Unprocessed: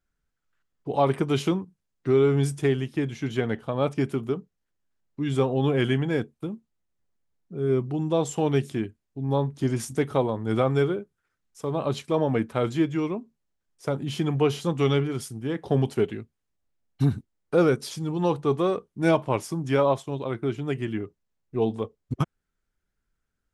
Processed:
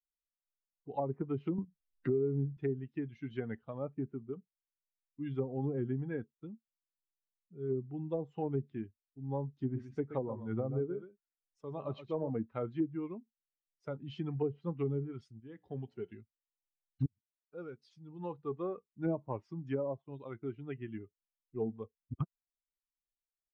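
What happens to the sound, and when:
0:01.58–0:02.57: multiband upward and downward compressor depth 70%
0:03.78–0:04.33: head-to-tape spacing loss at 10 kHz 39 dB
0:09.61–0:12.30: single-tap delay 125 ms −8.5 dB
0:15.40–0:16.12: tuned comb filter 61 Hz, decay 1.5 s, mix 50%
0:17.06–0:19.03: fade in
whole clip: spectral dynamics exaggerated over time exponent 1.5; treble cut that deepens with the level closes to 470 Hz, closed at −21 dBFS; low-pass filter 2,800 Hz 12 dB per octave; level −8 dB

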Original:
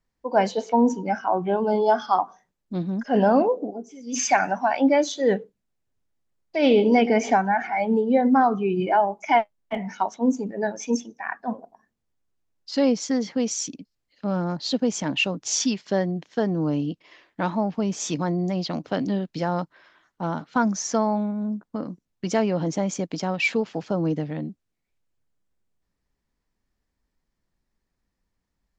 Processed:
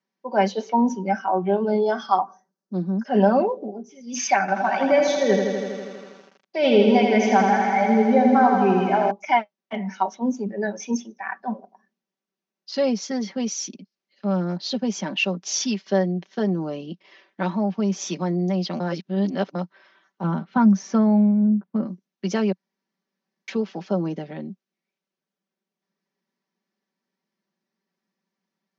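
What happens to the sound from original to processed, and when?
0:02.23–0:03.05: flat-topped bell 2,700 Hz −13.5 dB 1.2 octaves
0:04.40–0:09.11: feedback echo at a low word length 81 ms, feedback 80%, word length 8 bits, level −5 dB
0:18.80–0:19.55: reverse
0:20.23–0:21.87: bass and treble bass +10 dB, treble −11 dB
0:22.52–0:23.48: fill with room tone
whole clip: Chebyshev band-pass filter 180–6,100 Hz, order 4; comb filter 5.2 ms; level −1 dB

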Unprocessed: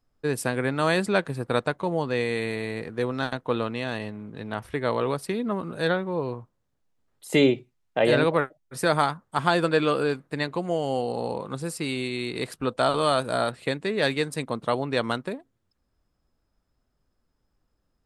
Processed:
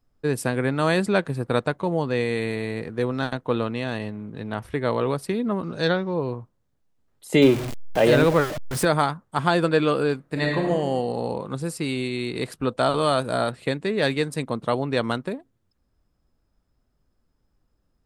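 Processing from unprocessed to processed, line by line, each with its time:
0:05.63–0:06.14: low-pass with resonance 5,600 Hz, resonance Q 5.3
0:07.42–0:08.85: converter with a step at zero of −26.5 dBFS
0:10.23–0:10.66: thrown reverb, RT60 1.2 s, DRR −1 dB
whole clip: low-shelf EQ 410 Hz +4.5 dB

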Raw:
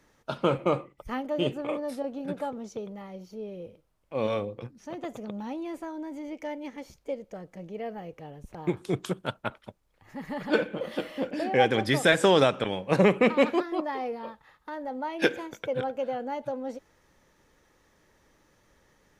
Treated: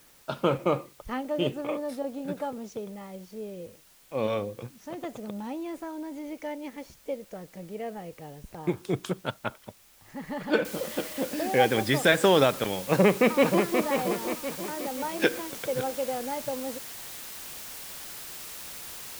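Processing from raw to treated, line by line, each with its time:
0:10.65: noise floor change −58 dB −41 dB
0:12.89–0:13.82: delay throw 530 ms, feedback 45%, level −6 dB

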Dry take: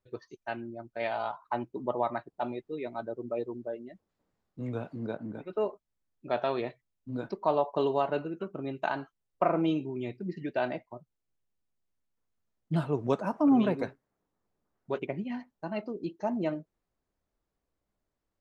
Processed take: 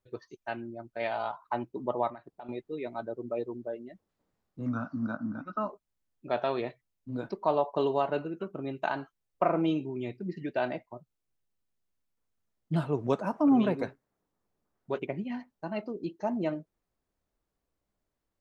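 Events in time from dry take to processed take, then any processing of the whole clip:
0:02.09–0:02.49: downward compressor 8 to 1, threshold −41 dBFS
0:04.66–0:05.70: drawn EQ curve 160 Hz 0 dB, 270 Hz +9 dB, 410 Hz −21 dB, 610 Hz −1 dB, 910 Hz 0 dB, 1,300 Hz +15 dB, 2,100 Hz −10 dB, 3,700 Hz −8 dB, 5,800 Hz +10 dB, 8,400 Hz −28 dB

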